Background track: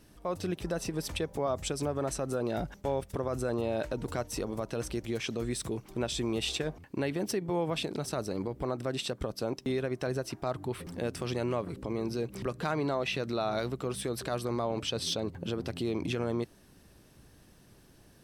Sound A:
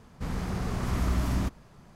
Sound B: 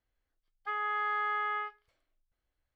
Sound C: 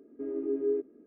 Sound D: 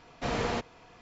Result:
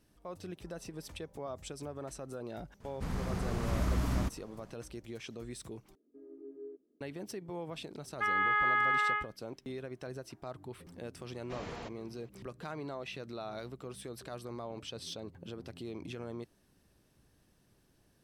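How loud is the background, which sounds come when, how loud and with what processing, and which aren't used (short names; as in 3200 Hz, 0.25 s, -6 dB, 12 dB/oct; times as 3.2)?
background track -10.5 dB
2.8 add A -4 dB
5.95 replace with C -17.5 dB + LPF 1300 Hz 6 dB/oct
7.54 add B -2 dB + bell 2100 Hz +8.5 dB 1.6 oct
11.28 add D -13 dB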